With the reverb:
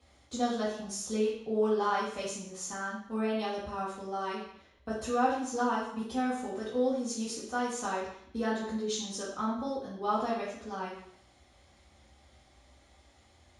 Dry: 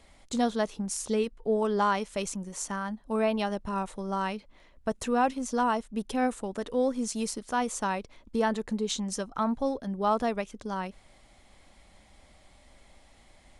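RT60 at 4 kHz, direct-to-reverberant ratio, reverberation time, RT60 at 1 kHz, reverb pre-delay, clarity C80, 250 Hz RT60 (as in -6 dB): 0.70 s, -8.0 dB, 0.70 s, 0.70 s, 3 ms, 6.5 dB, 0.75 s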